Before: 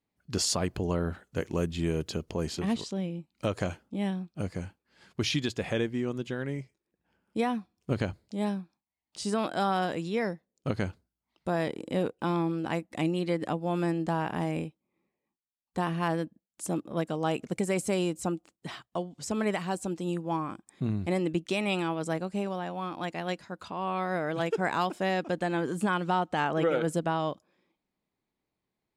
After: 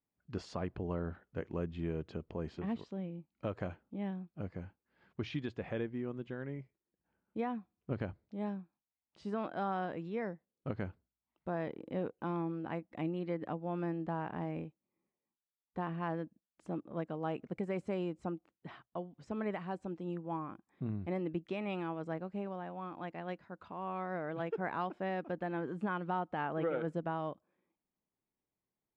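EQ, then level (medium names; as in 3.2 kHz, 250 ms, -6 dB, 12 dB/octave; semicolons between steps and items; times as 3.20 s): low-pass 2 kHz 12 dB/octave; -8.0 dB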